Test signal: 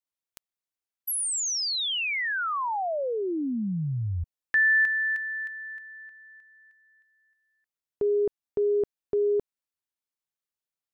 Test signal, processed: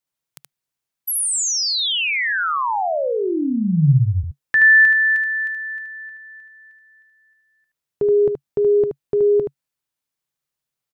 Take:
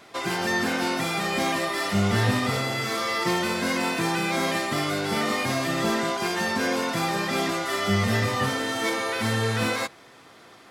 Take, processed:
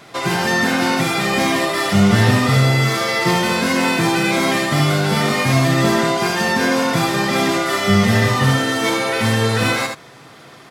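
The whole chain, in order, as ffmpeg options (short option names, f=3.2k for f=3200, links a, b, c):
-af "equalizer=f=140:w=3.1:g=10,aecho=1:1:75:0.531,volume=6.5dB"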